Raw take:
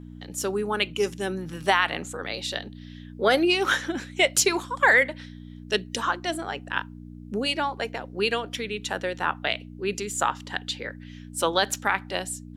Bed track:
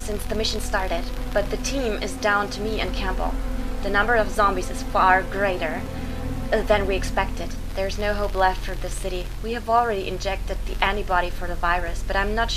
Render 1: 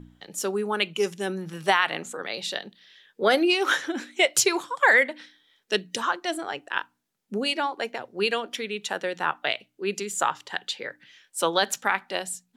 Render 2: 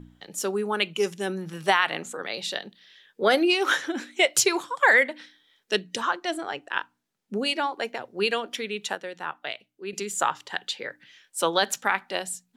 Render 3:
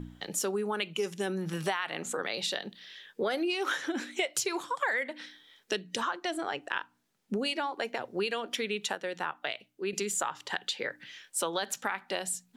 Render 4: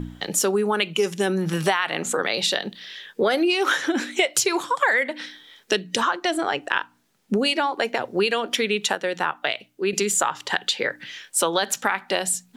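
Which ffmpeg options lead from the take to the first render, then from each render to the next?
-af "bandreject=f=60:t=h:w=4,bandreject=f=120:t=h:w=4,bandreject=f=180:t=h:w=4,bandreject=f=240:t=h:w=4,bandreject=f=300:t=h:w=4"
-filter_complex "[0:a]asettb=1/sr,asplit=3[a][b][c];[a]atrim=end=5.794[d];[b]atrim=start=5.79:end=7.39,asetpts=PTS-STARTPTS,afade=t=in:d=0.004:c=qsin,afade=t=out:st=1.596:d=0.004:c=qsin,highshelf=f=9.4k:g=-7[e];[c]atrim=start=7.386[f];[d][e]acrossfade=d=0.004:c1=hsin:c2=qsin[g];[g][f]acrossfade=d=0.004:c1=qsin:c2=hsin,asplit=3[h][i][j];[h]atrim=end=8.952[k];[i]atrim=start=8.948:end=9.932,asetpts=PTS-STARTPTS,volume=-7dB[l];[j]atrim=start=9.928[m];[k][l]acrossfade=d=0.004:c1=hsin:c2=hsin[n];[n][m]acrossfade=d=0.004:c1=hsin:c2=hsin"
-filter_complex "[0:a]asplit=2[a][b];[b]alimiter=limit=-20dB:level=0:latency=1,volume=-2.5dB[c];[a][c]amix=inputs=2:normalize=0,acompressor=threshold=-30dB:ratio=4"
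-af "volume=10dB"

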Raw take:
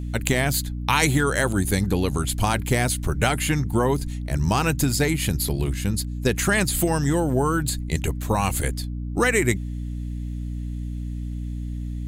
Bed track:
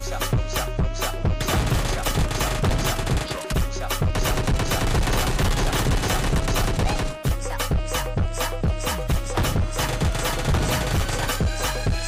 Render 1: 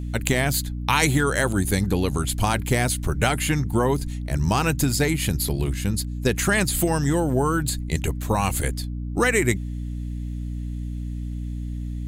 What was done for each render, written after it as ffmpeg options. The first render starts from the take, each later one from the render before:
-af anull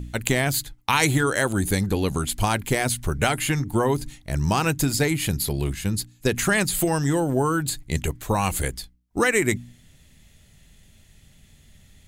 -af "bandreject=f=60:t=h:w=4,bandreject=f=120:t=h:w=4,bandreject=f=180:t=h:w=4,bandreject=f=240:t=h:w=4,bandreject=f=300:t=h:w=4"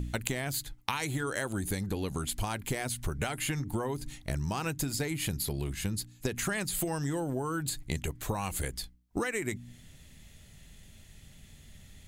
-af "acompressor=threshold=-29dB:ratio=10"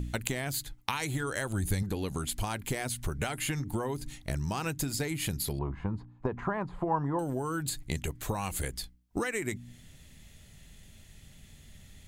-filter_complex "[0:a]asettb=1/sr,asplit=3[a][b][c];[a]atrim=end=0.934[d];[b]atrim=start=0.93:end=1.83,asetpts=PTS-STARTPTS,afade=t=in:d=0.004:c=qsin,afade=t=out:st=0.896:d=0.004:c=qsin,asubboost=boost=8:cutoff=150[e];[c]atrim=start=1.826[f];[d][e]acrossfade=d=0.004:c1=hsin:c2=qsin[g];[g][f]acrossfade=d=0.004:c1=qsin:c2=hsin,asettb=1/sr,asplit=3[h][i][j];[h]atrim=end=5.594[k];[i]atrim=start=5.59:end=7.19,asetpts=PTS-STARTPTS,afade=t=in:d=0.004:c=qsin,afade=t=out:st=1.596:d=0.004:c=qsin,lowpass=f=1k:t=q:w=4.6[l];[j]atrim=start=7.186[m];[k][l]acrossfade=d=0.004:c1=hsin:c2=qsin[n];[n][m]acrossfade=d=0.004:c1=qsin:c2=hsin"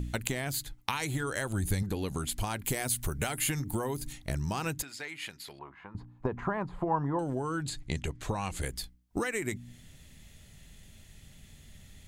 -filter_complex "[0:a]asettb=1/sr,asplit=3[a][b][c];[a]atrim=end=2.644[d];[b]atrim=start=2.64:end=4.13,asetpts=PTS-STARTPTS,afade=t=in:d=0.004:c=qsin,afade=t=out:st=1.486:d=0.004:c=qsin,highshelf=f=9k:g=11.5[e];[c]atrim=start=4.126[f];[d][e]acrossfade=d=0.004:c1=hsin:c2=qsin[g];[g][f]acrossfade=d=0.004:c1=qsin:c2=hsin,asettb=1/sr,asplit=3[h][i][j];[h]atrim=end=4.824[k];[i]atrim=start=4.82:end=5.95,asetpts=PTS-STARTPTS,afade=t=in:d=0.004:c=qsin,afade=t=out:st=1.126:d=0.004:c=qsin,bandpass=f=1.9k:t=q:w=0.89[l];[j]atrim=start=5.946[m];[k][l]acrossfade=d=0.004:c1=hsin:c2=qsin[n];[n][m]acrossfade=d=0.004:c1=qsin:c2=hsin,asettb=1/sr,asplit=3[o][p][q];[o]atrim=end=6.824[r];[p]atrim=start=6.82:end=8.63,asetpts=PTS-STARTPTS,afade=t=in:d=0.004:c=qsin,afade=t=out:st=1.806:d=0.004:c=qsin,lowpass=6.8k[s];[q]atrim=start=8.626[t];[r][s]acrossfade=d=0.004:c1=hsin:c2=qsin[u];[u][t]acrossfade=d=0.004:c1=qsin:c2=hsin"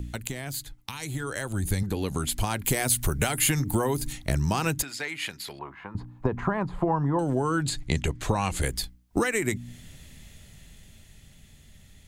-filter_complex "[0:a]acrossover=split=260|3400[a][b][c];[b]alimiter=limit=-23.5dB:level=0:latency=1:release=446[d];[a][d][c]amix=inputs=3:normalize=0,dynaudnorm=f=230:g=17:m=7.5dB"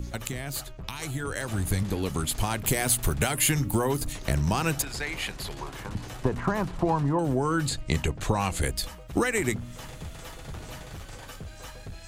-filter_complex "[1:a]volume=-18.5dB[a];[0:a][a]amix=inputs=2:normalize=0"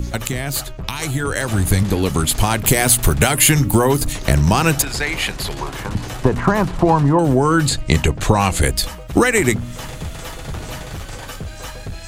-af "volume=11dB,alimiter=limit=-1dB:level=0:latency=1"

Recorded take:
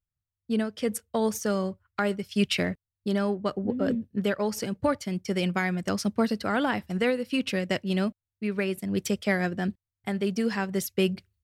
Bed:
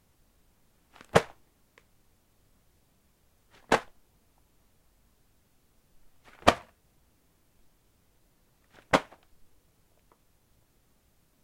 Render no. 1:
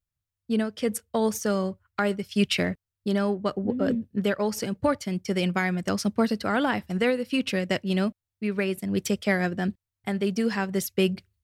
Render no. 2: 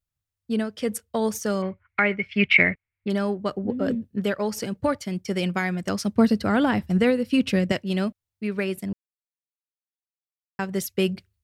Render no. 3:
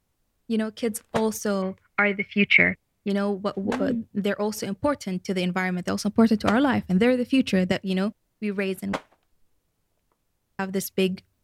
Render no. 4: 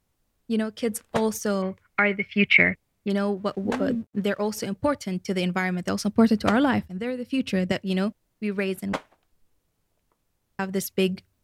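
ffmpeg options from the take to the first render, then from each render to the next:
-af "volume=1.5dB"
-filter_complex "[0:a]asettb=1/sr,asplit=3[a][b][c];[a]atrim=end=1.624[d];[b]atrim=start=1.62:end=3.1,asetpts=PTS-STARTPTS,afade=t=in:d=0.004:c=qsin,afade=t=out:st=1.476:d=0.004:c=qsin,lowpass=f=2.2k:t=q:w=9.6[e];[c]atrim=start=3.096[f];[d][e]acrossfade=d=0.004:c1=hsin:c2=qsin[g];[g][f]acrossfade=d=0.004:c1=qsin:c2=hsin,asettb=1/sr,asplit=3[h][i][j];[h]atrim=end=6.154[k];[i]atrim=start=6.15:end=7.72,asetpts=PTS-STARTPTS,afade=t=in:d=0.004:c=qsin,afade=t=out:st=1.566:d=0.004:c=qsin,lowshelf=f=280:g=10.5[l];[j]atrim=start=7.716[m];[k][l]acrossfade=d=0.004:c1=hsin:c2=qsin[n];[n][m]acrossfade=d=0.004:c1=qsin:c2=hsin,asplit=3[o][p][q];[o]atrim=end=8.93,asetpts=PTS-STARTPTS,afade=t=out:st=8.926:d=0.004:c=hsin[r];[p]atrim=start=8.93:end=10.59,asetpts=PTS-STARTPTS,volume=0[s];[q]atrim=start=10.59,asetpts=PTS-STARTPTS,afade=t=in:d=0.004:c=hsin[t];[r][s][t]concat=n=3:v=0:a=1"
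-filter_complex "[1:a]volume=-7dB[a];[0:a][a]amix=inputs=2:normalize=0"
-filter_complex "[0:a]asettb=1/sr,asplit=3[a][b][c];[a]atrim=end=3.374[d];[b]atrim=start=3.37:end=4.59,asetpts=PTS-STARTPTS,afade=t=in:d=0.004:c=qsin,afade=t=out:st=1.216:d=0.004:c=qsin,aeval=exprs='sgn(val(0))*max(abs(val(0))-0.00158,0)':c=same[e];[c]atrim=start=4.586[f];[d][e]acrossfade=d=0.004:c1=hsin:c2=qsin[g];[g][f]acrossfade=d=0.004:c1=qsin:c2=hsin,asplit=2[h][i];[h]atrim=end=6.88,asetpts=PTS-STARTPTS,afade=t=out:st=6.876:d=0.004:c=hsin:silence=0.177828[j];[i]atrim=start=6.88,asetpts=PTS-STARTPTS,afade=t=in:d=1.01:silence=0.177828[k];[j][k]concat=n=2:v=0:a=1"

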